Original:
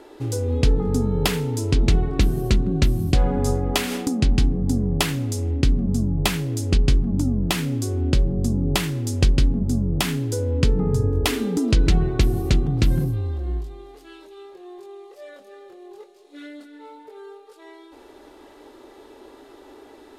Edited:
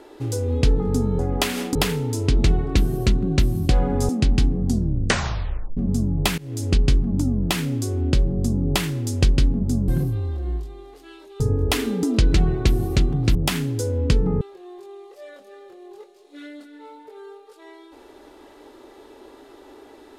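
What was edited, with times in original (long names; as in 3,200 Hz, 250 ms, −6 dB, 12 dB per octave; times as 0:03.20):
0:03.53–0:04.09: move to 0:01.19
0:04.64: tape stop 1.13 s
0:06.38–0:06.64: fade in, from −23 dB
0:09.88–0:10.94: swap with 0:12.89–0:14.41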